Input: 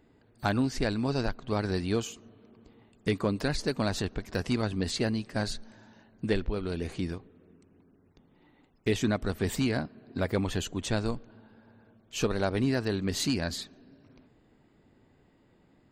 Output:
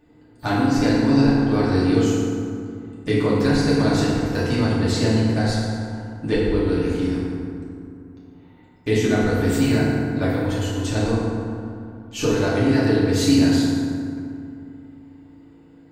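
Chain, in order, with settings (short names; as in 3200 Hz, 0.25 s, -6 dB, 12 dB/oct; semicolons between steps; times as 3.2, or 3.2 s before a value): 10.29–10.95 compressor, threshold -31 dBFS, peak gain reduction 8 dB; FDN reverb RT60 2.4 s, low-frequency decay 1.3×, high-frequency decay 0.5×, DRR -8 dB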